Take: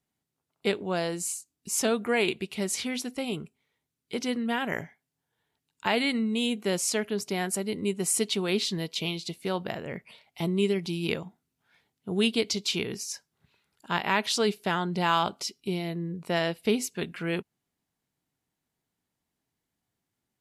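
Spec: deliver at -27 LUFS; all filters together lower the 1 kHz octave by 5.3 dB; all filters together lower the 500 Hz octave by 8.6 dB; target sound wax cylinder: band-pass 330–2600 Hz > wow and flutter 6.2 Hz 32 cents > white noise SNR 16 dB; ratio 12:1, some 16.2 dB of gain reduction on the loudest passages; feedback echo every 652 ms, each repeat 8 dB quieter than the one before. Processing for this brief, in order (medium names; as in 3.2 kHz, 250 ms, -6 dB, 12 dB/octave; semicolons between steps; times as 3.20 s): peaking EQ 500 Hz -9 dB; peaking EQ 1 kHz -3.5 dB; compression 12:1, threshold -39 dBFS; band-pass 330–2600 Hz; feedback delay 652 ms, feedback 40%, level -8 dB; wow and flutter 6.2 Hz 32 cents; white noise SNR 16 dB; trim +21.5 dB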